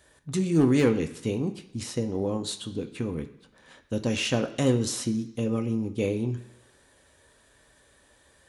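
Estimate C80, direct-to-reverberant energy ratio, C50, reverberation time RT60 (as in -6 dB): 15.0 dB, 5.5 dB, 13.0 dB, 1.0 s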